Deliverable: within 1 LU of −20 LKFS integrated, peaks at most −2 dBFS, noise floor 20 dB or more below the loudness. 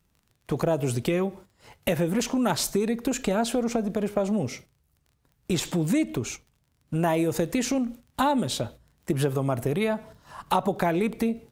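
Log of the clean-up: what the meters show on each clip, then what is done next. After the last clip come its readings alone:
crackle rate 23 per second; integrated loudness −27.0 LKFS; sample peak −8.0 dBFS; target loudness −20.0 LKFS
→ click removal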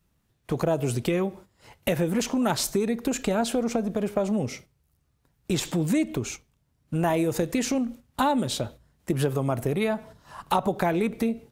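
crackle rate 0.17 per second; integrated loudness −27.0 LKFS; sample peak −8.0 dBFS; target loudness −20.0 LKFS
→ level +7 dB
brickwall limiter −2 dBFS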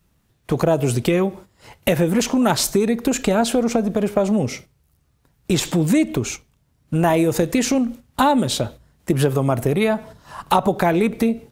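integrated loudness −20.0 LKFS; sample peak −2.0 dBFS; background noise floor −63 dBFS

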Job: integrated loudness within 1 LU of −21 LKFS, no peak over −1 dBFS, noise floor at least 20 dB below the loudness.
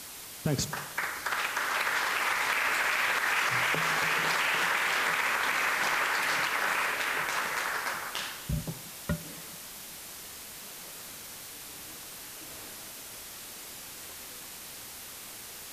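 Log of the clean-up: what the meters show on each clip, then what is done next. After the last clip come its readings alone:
background noise floor −44 dBFS; target noise floor −48 dBFS; integrated loudness −28.0 LKFS; sample peak −16.5 dBFS; target loudness −21.0 LKFS
→ broadband denoise 6 dB, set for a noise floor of −44 dBFS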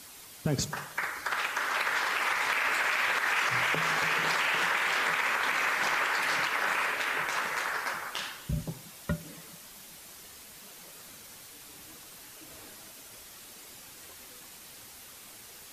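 background noise floor −49 dBFS; integrated loudness −28.5 LKFS; sample peak −17.5 dBFS; target loudness −21.0 LKFS
→ level +7.5 dB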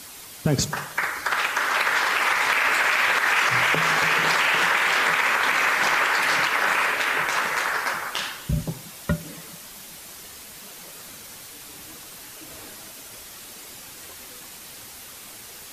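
integrated loudness −21.0 LKFS; sample peak −10.0 dBFS; background noise floor −42 dBFS

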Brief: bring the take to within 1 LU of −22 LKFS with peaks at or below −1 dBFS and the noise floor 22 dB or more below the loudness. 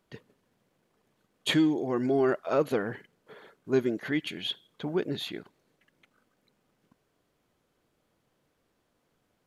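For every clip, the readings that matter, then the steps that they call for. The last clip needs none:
integrated loudness −29.0 LKFS; sample peak −14.0 dBFS; target loudness −22.0 LKFS
→ level +7 dB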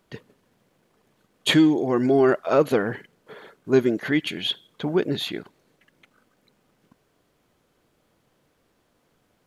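integrated loudness −22.0 LKFS; sample peak −7.0 dBFS; background noise floor −68 dBFS

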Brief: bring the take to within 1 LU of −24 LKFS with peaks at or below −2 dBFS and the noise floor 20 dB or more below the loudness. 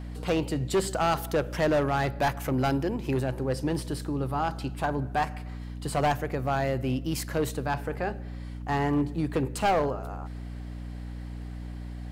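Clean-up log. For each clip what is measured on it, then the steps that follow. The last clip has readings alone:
share of clipped samples 1.7%; peaks flattened at −19.5 dBFS; mains hum 60 Hz; hum harmonics up to 300 Hz; level of the hum −35 dBFS; integrated loudness −28.5 LKFS; sample peak −19.5 dBFS; target loudness −24.0 LKFS
→ clipped peaks rebuilt −19.5 dBFS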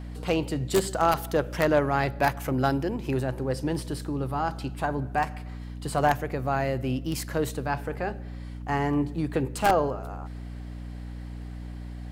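share of clipped samples 0.0%; mains hum 60 Hz; hum harmonics up to 240 Hz; level of the hum −35 dBFS
→ mains-hum notches 60/120/180/240 Hz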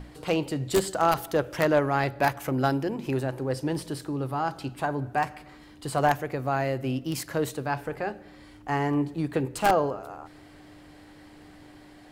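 mains hum none found; integrated loudness −27.5 LKFS; sample peak −9.5 dBFS; target loudness −24.0 LKFS
→ level +3.5 dB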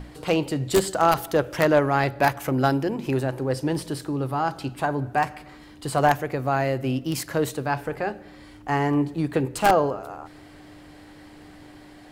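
integrated loudness −24.0 LKFS; sample peak −6.0 dBFS; background noise floor −47 dBFS

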